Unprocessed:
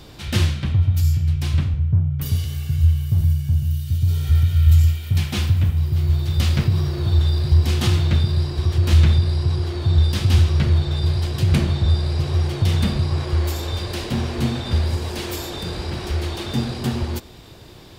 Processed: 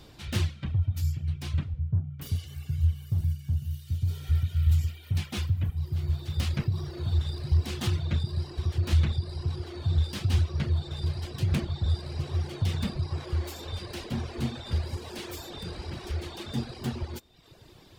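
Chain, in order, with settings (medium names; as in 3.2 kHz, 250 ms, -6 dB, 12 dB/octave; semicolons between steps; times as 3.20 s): self-modulated delay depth 0.12 ms; reverb removal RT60 0.85 s; trim -8 dB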